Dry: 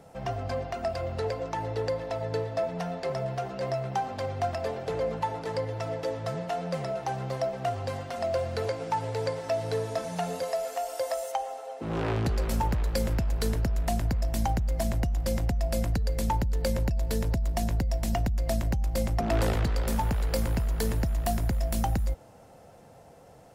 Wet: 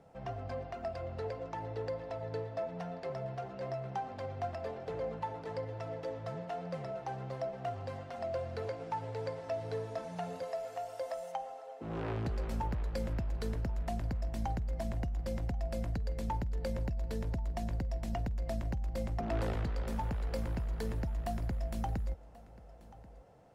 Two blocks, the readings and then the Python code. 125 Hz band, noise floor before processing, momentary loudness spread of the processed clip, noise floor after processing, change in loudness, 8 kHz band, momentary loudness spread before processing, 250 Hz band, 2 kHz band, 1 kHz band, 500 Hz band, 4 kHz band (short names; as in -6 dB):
-8.0 dB, -52 dBFS, 5 LU, -53 dBFS, -8.5 dB, -16.5 dB, 4 LU, -8.0 dB, -9.5 dB, -8.5 dB, -8.0 dB, -13.0 dB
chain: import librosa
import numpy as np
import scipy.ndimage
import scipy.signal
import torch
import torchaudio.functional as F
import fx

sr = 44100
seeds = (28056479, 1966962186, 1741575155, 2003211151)

y = fx.lowpass(x, sr, hz=2800.0, slope=6)
y = y + 10.0 ** (-20.0 / 20.0) * np.pad(y, (int(1085 * sr / 1000.0), 0))[:len(y)]
y = y * librosa.db_to_amplitude(-8.0)